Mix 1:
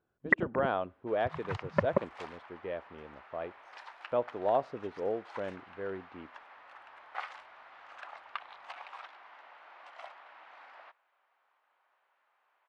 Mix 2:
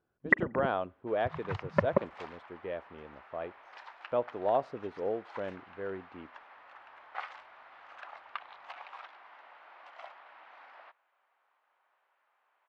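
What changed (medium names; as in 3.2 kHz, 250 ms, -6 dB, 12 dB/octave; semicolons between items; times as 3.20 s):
first sound: send on; second sound: add distance through air 71 m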